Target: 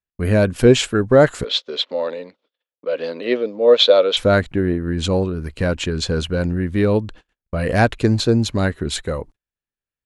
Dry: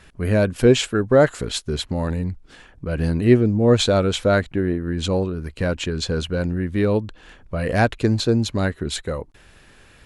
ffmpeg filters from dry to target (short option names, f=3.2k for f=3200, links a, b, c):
-filter_complex "[0:a]agate=range=-48dB:threshold=-39dB:ratio=16:detection=peak,asettb=1/sr,asplit=3[a][b][c];[a]atrim=end=1.444[d];[b]atrim=start=1.44:end=4.17,asetpts=PTS-STARTPTS,afade=t=in:d=0.004:c=qsin,afade=t=out:st=2.726:d=0.004:c=qsin,highpass=f=340:w=0.5412,highpass=f=340:w=1.3066,equalizer=f=350:t=q:w=4:g=-9,equalizer=f=530:t=q:w=4:g=10,equalizer=f=780:t=q:w=4:g=-5,equalizer=f=1.6k:t=q:w=4:g=-5,equalizer=f=3.5k:t=q:w=4:g=9,lowpass=f=4.9k:w=0.5412,lowpass=f=4.9k:w=1.3066[e];[c]atrim=start=4.166[f];[d][e]acrossfade=d=0.004:c1=hsin:c2=qsin[g];[g][f]acrossfade=d=0.004:c1=qsin:c2=hsin,volume=2.5dB"